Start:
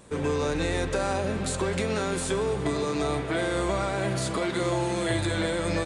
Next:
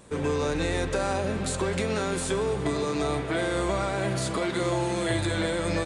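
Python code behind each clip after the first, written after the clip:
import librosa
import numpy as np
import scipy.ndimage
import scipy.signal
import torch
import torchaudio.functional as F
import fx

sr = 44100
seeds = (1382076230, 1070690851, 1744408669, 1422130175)

y = x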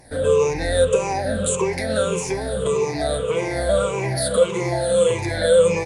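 y = fx.spec_ripple(x, sr, per_octave=0.75, drift_hz=-1.7, depth_db=20)
y = fx.graphic_eq_31(y, sr, hz=(315, 500, 1250, 10000), db=(-11, 12, -5, 10))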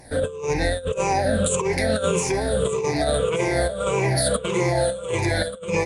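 y = fx.over_compress(x, sr, threshold_db=-22.0, ratio=-0.5)
y = y + 10.0 ** (-14.5 / 20.0) * np.pad(y, (int(1185 * sr / 1000.0), 0))[:len(y)]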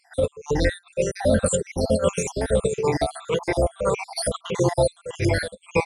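y = fx.spec_dropout(x, sr, seeds[0], share_pct=58)
y = fx.upward_expand(y, sr, threshold_db=-40.0, expansion=1.5)
y = y * librosa.db_to_amplitude(4.0)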